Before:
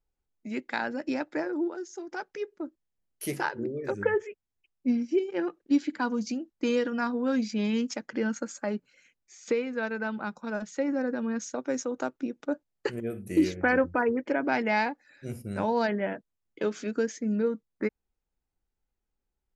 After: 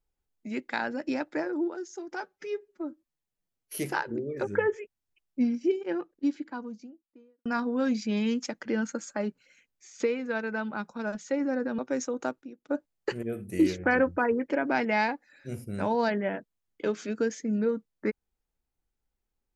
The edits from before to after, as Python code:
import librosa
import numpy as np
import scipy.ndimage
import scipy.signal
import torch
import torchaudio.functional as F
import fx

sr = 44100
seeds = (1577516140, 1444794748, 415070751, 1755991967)

y = fx.studio_fade_out(x, sr, start_s=4.95, length_s=1.98)
y = fx.edit(y, sr, fx.stretch_span(start_s=2.2, length_s=1.05, factor=1.5),
    fx.cut(start_s=11.26, length_s=0.3),
    fx.clip_gain(start_s=12.19, length_s=0.27, db=-11.5), tone=tone)